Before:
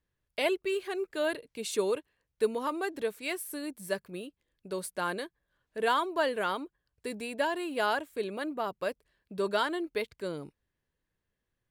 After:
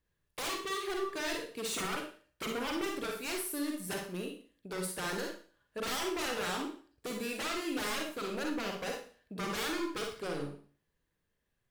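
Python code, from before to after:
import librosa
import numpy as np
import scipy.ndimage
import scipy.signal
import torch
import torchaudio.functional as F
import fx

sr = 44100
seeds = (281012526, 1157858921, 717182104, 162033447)

y = 10.0 ** (-32.5 / 20.0) * (np.abs((x / 10.0 ** (-32.5 / 20.0) + 3.0) % 4.0 - 2.0) - 1.0)
y = fx.rev_schroeder(y, sr, rt60_s=0.43, comb_ms=38, drr_db=1.0)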